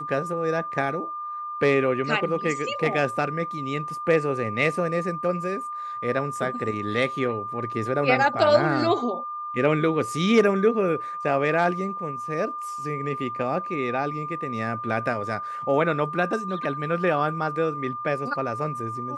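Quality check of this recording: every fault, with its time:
tone 1200 Hz -30 dBFS

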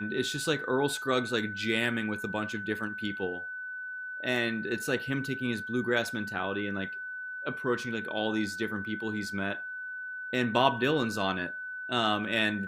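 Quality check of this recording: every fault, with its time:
tone 1500 Hz -36 dBFS

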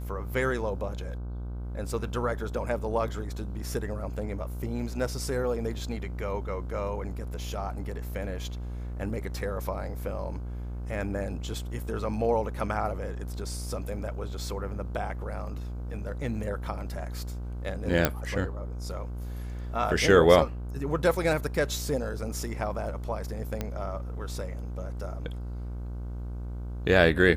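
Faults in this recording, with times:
buzz 60 Hz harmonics 26 -35 dBFS
18.05 pop -6 dBFS
23.61 pop -16 dBFS

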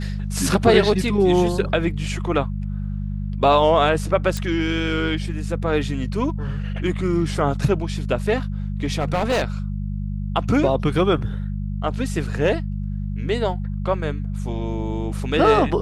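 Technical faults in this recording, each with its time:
hum 50 Hz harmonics 4 -26 dBFS
4.37 pop -12 dBFS
8.85–9.43 clipped -16 dBFS

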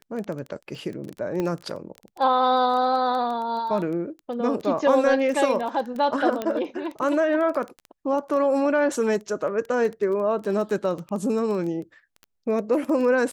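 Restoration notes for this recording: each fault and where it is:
crackle 14/s -29 dBFS
1.4 pop -15 dBFS
6.42 pop -14 dBFS

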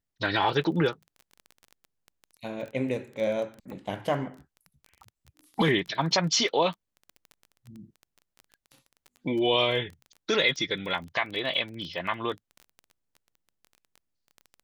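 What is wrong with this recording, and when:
crackle 17/s -35 dBFS

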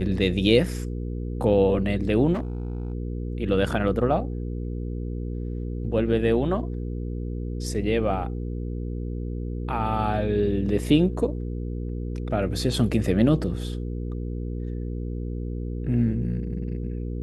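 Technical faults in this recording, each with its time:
hum 60 Hz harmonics 8 -30 dBFS
2.33–2.93 clipped -25 dBFS

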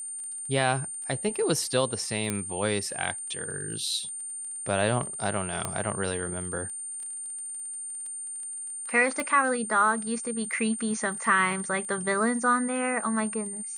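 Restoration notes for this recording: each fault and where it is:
crackle 18/s -37 dBFS
tone 9000 Hz -34 dBFS
2.3 pop -13 dBFS
5.65 pop -14 dBFS
9.2 pop -15 dBFS

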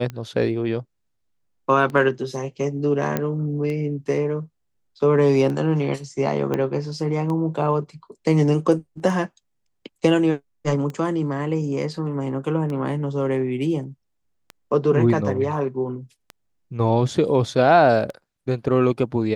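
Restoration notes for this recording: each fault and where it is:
tick 33 1/3 rpm -19 dBFS
3.17 pop -9 dBFS
6.54 pop -12 dBFS

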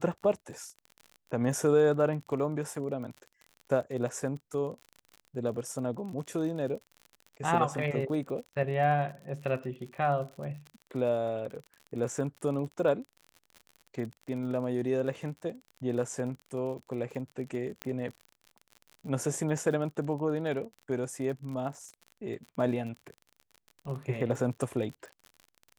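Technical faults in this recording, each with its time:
crackle 49/s -39 dBFS
17.82 pop -18 dBFS

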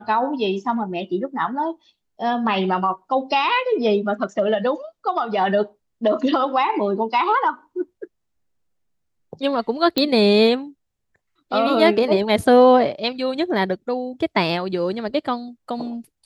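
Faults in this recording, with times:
9.98 pop -6 dBFS

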